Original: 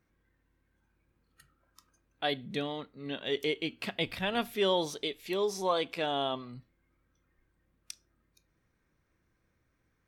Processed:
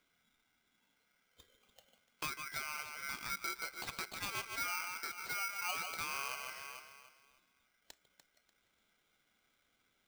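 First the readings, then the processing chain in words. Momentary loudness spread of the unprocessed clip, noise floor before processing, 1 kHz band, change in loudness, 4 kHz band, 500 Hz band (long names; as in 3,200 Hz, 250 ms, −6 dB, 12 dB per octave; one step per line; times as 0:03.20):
19 LU, −76 dBFS, −6.5 dB, −7.0 dB, −9.5 dB, −23.5 dB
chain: high-pass filter 280 Hz 12 dB per octave
delay that swaps between a low-pass and a high-pass 147 ms, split 1,600 Hz, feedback 54%, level −8 dB
downward compressor 3 to 1, threshold −43 dBFS, peak gain reduction 14 dB
low-pass filter 2,700 Hz 12 dB per octave
ring modulator with a square carrier 1,800 Hz
level +2.5 dB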